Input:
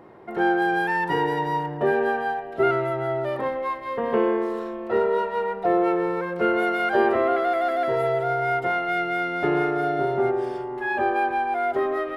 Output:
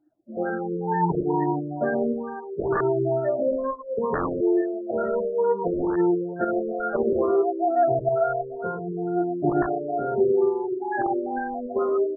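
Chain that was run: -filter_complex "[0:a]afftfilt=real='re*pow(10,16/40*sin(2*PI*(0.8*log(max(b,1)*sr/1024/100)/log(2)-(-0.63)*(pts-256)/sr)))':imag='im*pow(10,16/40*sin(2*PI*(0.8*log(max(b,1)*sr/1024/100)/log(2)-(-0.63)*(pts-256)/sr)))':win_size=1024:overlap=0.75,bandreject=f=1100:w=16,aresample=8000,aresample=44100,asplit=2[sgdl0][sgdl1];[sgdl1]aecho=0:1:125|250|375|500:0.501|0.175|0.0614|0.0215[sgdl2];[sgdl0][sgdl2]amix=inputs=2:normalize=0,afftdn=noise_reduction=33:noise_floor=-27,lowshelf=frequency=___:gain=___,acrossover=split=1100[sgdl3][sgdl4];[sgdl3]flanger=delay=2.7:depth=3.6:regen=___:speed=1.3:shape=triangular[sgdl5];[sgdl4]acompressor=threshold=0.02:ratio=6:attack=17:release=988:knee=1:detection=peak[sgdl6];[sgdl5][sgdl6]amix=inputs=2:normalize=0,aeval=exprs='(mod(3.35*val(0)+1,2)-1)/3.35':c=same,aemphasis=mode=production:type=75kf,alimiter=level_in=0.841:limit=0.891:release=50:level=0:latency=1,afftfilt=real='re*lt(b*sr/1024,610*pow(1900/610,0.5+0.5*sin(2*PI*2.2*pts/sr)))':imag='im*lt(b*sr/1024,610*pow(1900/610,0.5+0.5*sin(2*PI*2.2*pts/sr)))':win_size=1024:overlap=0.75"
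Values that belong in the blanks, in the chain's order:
400, 9, 77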